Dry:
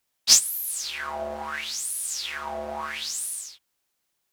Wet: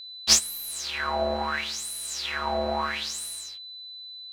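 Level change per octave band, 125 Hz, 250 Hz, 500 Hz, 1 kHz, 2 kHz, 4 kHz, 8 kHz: n/a, +7.5 dB, +5.5 dB, +4.5 dB, +2.5 dB, -0.5 dB, -3.5 dB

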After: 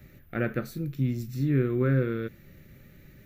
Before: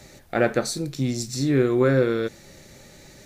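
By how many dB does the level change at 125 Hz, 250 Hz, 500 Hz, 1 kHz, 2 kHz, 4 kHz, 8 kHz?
0.0 dB, -5.0 dB, -9.5 dB, -10.5 dB, -7.5 dB, under -15 dB, under -20 dB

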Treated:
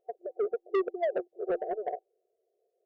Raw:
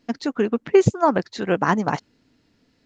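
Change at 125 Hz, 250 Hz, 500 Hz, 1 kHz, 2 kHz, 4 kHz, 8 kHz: under -35 dB, -18.0 dB, -9.5 dB, -14.5 dB, -18.0 dB, under -20 dB, n/a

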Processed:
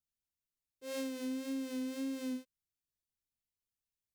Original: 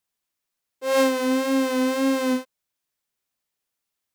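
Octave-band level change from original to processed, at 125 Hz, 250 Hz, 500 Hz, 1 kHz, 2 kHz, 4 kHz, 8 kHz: n/a, -15.0 dB, -21.5 dB, -28.0 dB, -22.0 dB, -17.5 dB, -16.0 dB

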